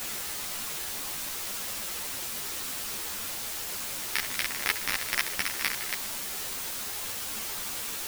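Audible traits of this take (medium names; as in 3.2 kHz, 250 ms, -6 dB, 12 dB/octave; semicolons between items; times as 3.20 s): aliases and images of a low sample rate 7.5 kHz, jitter 0%; chopped level 3.9 Hz, depth 65%, duty 35%; a quantiser's noise floor 6-bit, dither triangular; a shimmering, thickened sound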